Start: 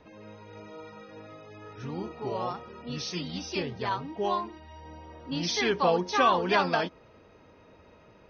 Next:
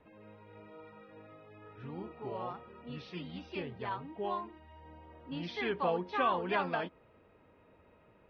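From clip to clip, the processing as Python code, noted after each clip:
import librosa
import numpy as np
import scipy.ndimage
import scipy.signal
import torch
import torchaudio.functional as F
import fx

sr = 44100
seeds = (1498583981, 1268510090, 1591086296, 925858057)

y = scipy.signal.sosfilt(scipy.signal.butter(4, 3200.0, 'lowpass', fs=sr, output='sos'), x)
y = y * librosa.db_to_amplitude(-7.5)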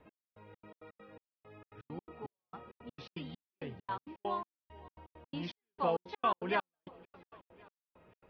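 y = fx.echo_feedback(x, sr, ms=535, feedback_pct=52, wet_db=-23)
y = fx.step_gate(y, sr, bpm=166, pattern='x...xx.x.x.x', floor_db=-60.0, edge_ms=4.5)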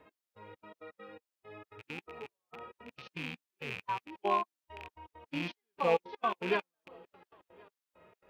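y = fx.rattle_buzz(x, sr, strikes_db=-51.0, level_db=-30.0)
y = fx.bass_treble(y, sr, bass_db=-8, treble_db=0)
y = fx.hpss(y, sr, part='percussive', gain_db=-16)
y = y * librosa.db_to_amplitude(8.0)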